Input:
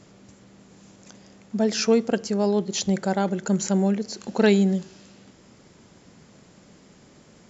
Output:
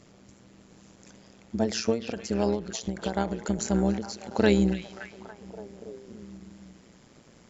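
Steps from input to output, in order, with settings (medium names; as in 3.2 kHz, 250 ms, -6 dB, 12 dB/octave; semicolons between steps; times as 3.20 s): repeats whose band climbs or falls 285 ms, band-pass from 2.7 kHz, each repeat -0.7 oct, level -6 dB; AM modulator 120 Hz, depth 55%; endings held to a fixed fall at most 150 dB/s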